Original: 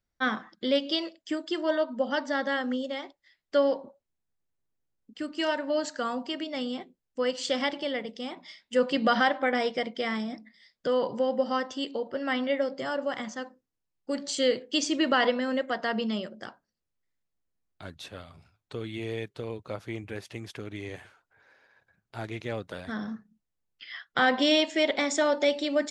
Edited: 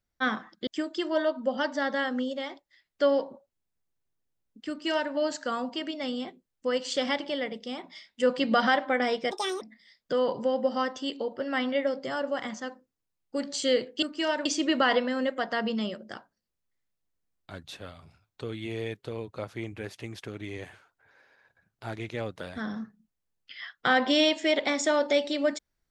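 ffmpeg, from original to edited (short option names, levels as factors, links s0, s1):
-filter_complex "[0:a]asplit=6[s0][s1][s2][s3][s4][s5];[s0]atrim=end=0.672[s6];[s1]atrim=start=1.198:end=9.844[s7];[s2]atrim=start=9.84:end=10.36,asetpts=PTS-STARTPTS,asetrate=75411,aresample=44100[s8];[s3]atrim=start=10.356:end=14.772[s9];[s4]atrim=start=5.218:end=5.652[s10];[s5]atrim=start=14.768[s11];[s6][s7]acrossfade=d=0.004:c1=hsin:c2=hsin[s12];[s12][s8]acrossfade=d=0.004:c1=hsin:c2=hsin[s13];[s13][s9]acrossfade=d=0.004:c1=hsin:c2=hsin[s14];[s14][s10]acrossfade=d=0.004:c1=hsin:c2=hsin[s15];[s15][s11]acrossfade=d=0.004:c1=hsin:c2=hsin"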